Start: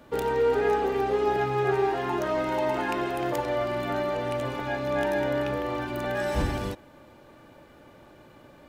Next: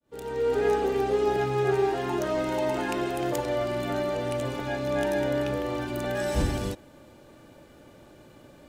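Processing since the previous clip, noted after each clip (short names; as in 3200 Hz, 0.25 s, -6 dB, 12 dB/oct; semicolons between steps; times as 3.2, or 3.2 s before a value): opening faded in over 0.66 s; ten-band EQ 1000 Hz -5 dB, 2000 Hz -3 dB, 8000 Hz +5 dB; gain +1.5 dB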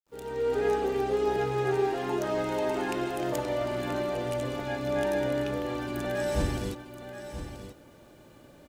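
bit-crush 11-bit; on a send: echo 0.98 s -10.5 dB; on the sum: gain -2.5 dB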